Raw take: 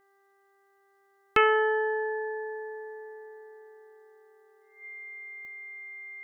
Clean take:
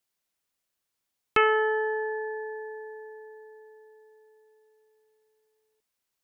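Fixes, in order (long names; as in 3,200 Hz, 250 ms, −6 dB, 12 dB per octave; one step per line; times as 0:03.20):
click removal
hum removal 394.5 Hz, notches 5
notch filter 2,100 Hz, Q 30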